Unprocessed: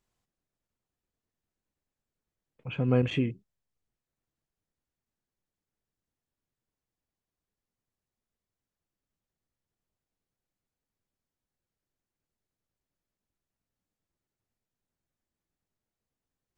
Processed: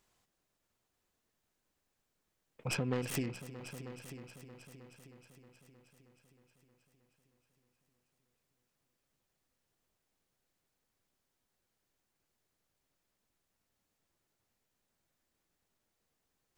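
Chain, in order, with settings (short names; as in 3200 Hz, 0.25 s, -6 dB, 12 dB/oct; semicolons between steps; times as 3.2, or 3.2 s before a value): tracing distortion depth 0.35 ms; compressor 5:1, threshold -37 dBFS, peak gain reduction 17 dB; low shelf 270 Hz -7.5 dB; on a send: multi-head echo 0.314 s, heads all three, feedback 52%, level -16 dB; on the sum: gain +8 dB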